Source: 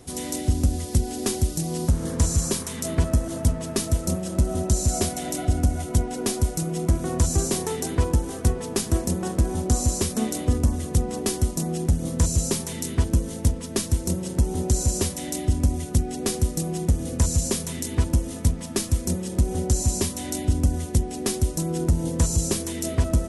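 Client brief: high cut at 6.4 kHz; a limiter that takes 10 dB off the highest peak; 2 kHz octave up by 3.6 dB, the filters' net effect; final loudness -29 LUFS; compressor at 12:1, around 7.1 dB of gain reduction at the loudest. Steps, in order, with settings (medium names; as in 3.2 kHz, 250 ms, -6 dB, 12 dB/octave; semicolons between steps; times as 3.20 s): low-pass 6.4 kHz; peaking EQ 2 kHz +4.5 dB; compression 12:1, threshold -22 dBFS; trim +2.5 dB; peak limiter -19.5 dBFS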